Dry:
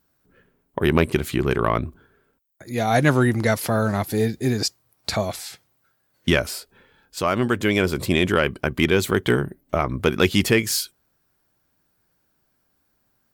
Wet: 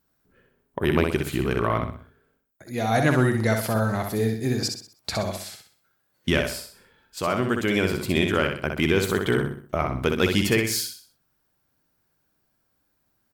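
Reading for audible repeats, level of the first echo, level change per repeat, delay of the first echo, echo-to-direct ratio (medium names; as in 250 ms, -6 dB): 4, -5.0 dB, -8.0 dB, 63 ms, -4.5 dB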